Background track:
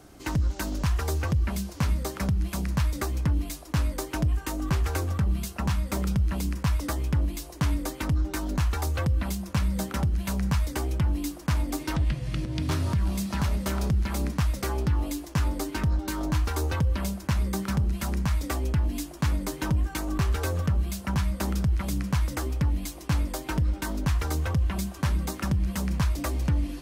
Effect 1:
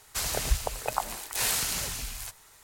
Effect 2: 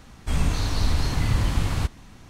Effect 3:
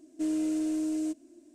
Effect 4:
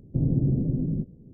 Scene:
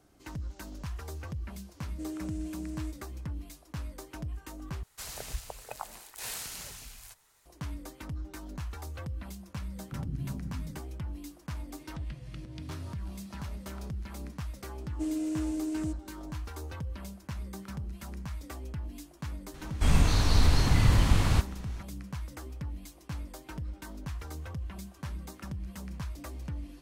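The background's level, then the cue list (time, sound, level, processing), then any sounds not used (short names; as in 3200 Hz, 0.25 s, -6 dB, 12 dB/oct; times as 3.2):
background track -13 dB
1.79 add 3 -9.5 dB
4.83 replace with 1 -11 dB
9.77 add 4 -14.5 dB + spectral expander 1.5:1
14.8 add 3 -3 dB
19.54 add 2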